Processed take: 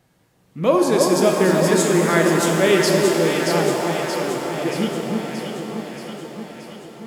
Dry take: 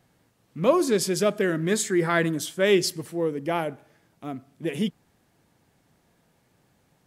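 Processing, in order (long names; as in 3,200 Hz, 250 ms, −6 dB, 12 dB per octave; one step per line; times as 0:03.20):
delay that swaps between a low-pass and a high-pass 314 ms, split 1,200 Hz, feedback 78%, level −3 dB
reverb with rising layers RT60 3.6 s, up +7 semitones, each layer −8 dB, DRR 2 dB
level +2.5 dB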